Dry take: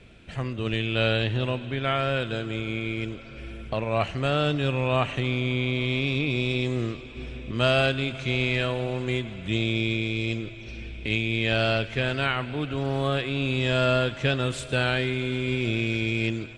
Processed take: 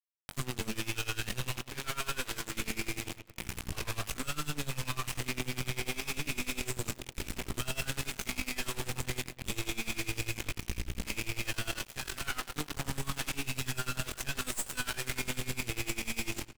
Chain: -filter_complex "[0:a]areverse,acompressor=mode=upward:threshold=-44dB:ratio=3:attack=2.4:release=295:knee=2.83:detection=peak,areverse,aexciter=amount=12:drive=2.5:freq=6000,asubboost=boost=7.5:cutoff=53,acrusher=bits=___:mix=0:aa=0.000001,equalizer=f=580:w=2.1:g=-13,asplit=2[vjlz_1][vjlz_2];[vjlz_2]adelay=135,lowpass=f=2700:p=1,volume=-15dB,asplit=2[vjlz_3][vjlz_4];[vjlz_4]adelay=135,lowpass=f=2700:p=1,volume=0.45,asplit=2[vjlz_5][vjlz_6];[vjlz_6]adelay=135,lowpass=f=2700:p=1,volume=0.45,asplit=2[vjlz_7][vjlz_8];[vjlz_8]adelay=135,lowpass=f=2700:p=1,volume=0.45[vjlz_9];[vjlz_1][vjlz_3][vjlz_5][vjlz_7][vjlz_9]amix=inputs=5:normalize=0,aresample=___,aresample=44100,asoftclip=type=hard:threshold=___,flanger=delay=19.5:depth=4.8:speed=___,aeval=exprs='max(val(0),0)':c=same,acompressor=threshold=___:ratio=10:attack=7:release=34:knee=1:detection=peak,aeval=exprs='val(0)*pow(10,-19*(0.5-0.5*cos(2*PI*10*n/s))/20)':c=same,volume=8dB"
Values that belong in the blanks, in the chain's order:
4, 32000, -25dB, 0.48, -36dB